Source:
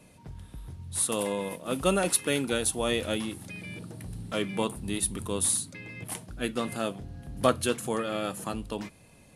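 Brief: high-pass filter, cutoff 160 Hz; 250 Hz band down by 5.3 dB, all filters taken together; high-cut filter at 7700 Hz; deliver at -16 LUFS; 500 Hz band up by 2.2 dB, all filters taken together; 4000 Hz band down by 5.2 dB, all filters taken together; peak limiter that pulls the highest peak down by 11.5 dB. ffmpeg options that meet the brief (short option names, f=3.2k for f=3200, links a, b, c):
-af "highpass=160,lowpass=7.7k,equalizer=f=250:t=o:g=-7.5,equalizer=f=500:t=o:g=4.5,equalizer=f=4k:t=o:g=-6.5,volume=17.5dB,alimiter=limit=-3dB:level=0:latency=1"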